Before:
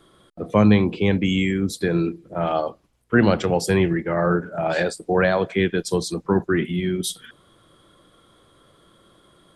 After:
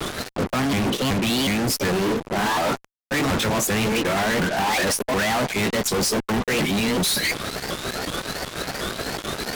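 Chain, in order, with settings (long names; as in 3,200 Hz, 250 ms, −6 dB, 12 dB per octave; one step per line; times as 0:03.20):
pitch shifter swept by a sawtooth +6 semitones, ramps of 367 ms
reversed playback
downward compressor 8 to 1, threshold −34 dBFS, peak gain reduction 22.5 dB
reversed playback
high-shelf EQ 8,000 Hz −8 dB
harmonic and percussive parts rebalanced harmonic −8 dB
dynamic equaliser 600 Hz, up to −5 dB, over −51 dBFS, Q 0.95
fuzz pedal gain 61 dB, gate −60 dBFS
pitch vibrato 0.83 Hz 46 cents
level −7 dB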